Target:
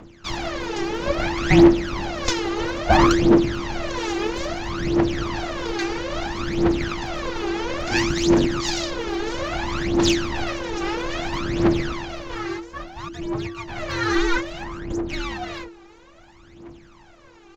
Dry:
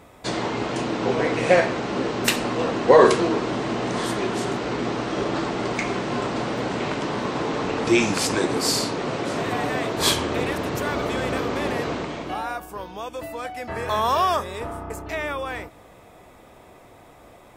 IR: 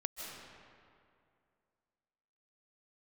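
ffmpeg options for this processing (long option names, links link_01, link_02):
-af "aeval=exprs='abs(val(0))':channel_layout=same,aresample=16000,aresample=44100,afreqshift=-340,aphaser=in_gain=1:out_gain=1:delay=2.6:decay=0.78:speed=0.6:type=triangular,volume=-1.5dB"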